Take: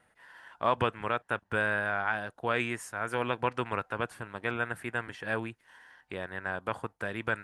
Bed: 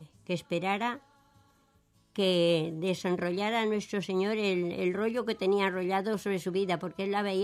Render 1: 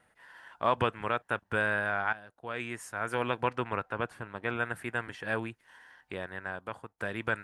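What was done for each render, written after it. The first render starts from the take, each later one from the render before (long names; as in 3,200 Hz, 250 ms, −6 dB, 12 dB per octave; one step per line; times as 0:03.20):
0:02.13–0:02.95: fade in quadratic, from −13.5 dB
0:03.55–0:04.52: high-shelf EQ 4,600 Hz −8.5 dB
0:06.14–0:06.98: fade out, to −12 dB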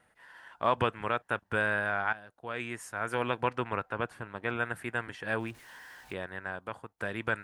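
0:05.40–0:06.13: converter with a step at zero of −49.5 dBFS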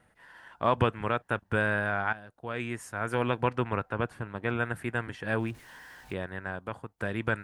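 low-shelf EQ 330 Hz +8.5 dB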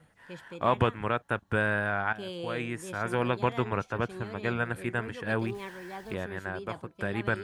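mix in bed −12.5 dB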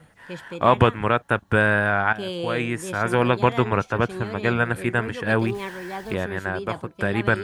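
level +8.5 dB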